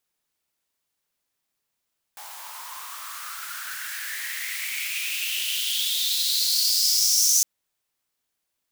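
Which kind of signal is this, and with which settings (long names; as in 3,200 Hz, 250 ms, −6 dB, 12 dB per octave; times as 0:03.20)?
filter sweep on noise white, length 5.26 s highpass, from 830 Hz, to 6,200 Hz, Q 6.5, exponential, gain ramp +18 dB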